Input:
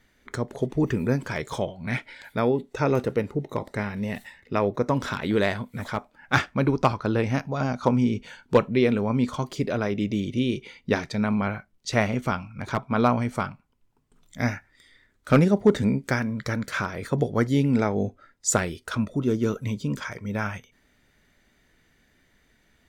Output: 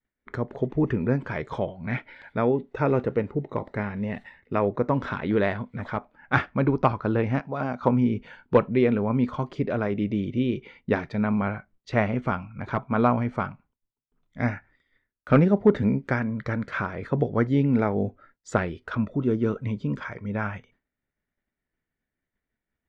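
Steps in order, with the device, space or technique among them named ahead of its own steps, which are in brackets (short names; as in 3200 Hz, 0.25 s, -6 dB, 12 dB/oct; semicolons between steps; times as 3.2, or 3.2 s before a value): 7.4–7.81 HPF 230 Hz 6 dB/oct; hearing-loss simulation (LPF 2200 Hz 12 dB/oct; expander -50 dBFS)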